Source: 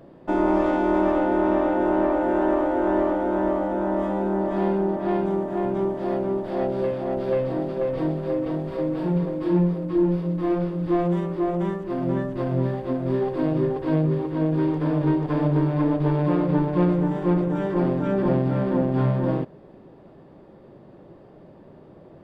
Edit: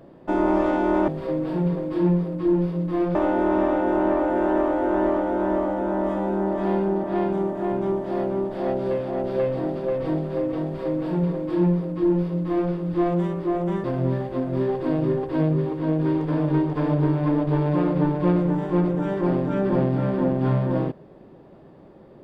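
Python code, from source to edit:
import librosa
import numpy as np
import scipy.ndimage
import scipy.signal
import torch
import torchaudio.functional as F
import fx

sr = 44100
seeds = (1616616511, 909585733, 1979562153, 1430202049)

y = fx.edit(x, sr, fx.duplicate(start_s=8.58, length_s=2.07, to_s=1.08),
    fx.cut(start_s=11.77, length_s=0.6), tone=tone)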